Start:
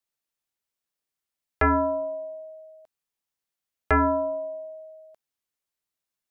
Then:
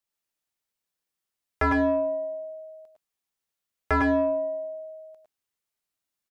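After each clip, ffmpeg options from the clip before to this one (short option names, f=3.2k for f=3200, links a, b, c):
-filter_complex "[0:a]asplit=2[a][b];[b]asoftclip=type=tanh:threshold=-23dB,volume=-4.5dB[c];[a][c]amix=inputs=2:normalize=0,aecho=1:1:101|111:0.531|0.562,volume=-5dB"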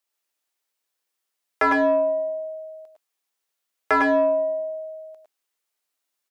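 -af "highpass=350,volume=5.5dB"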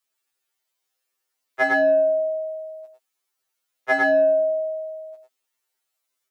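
-af "afftfilt=real='re*2.45*eq(mod(b,6),0)':imag='im*2.45*eq(mod(b,6),0)':win_size=2048:overlap=0.75,volume=4dB"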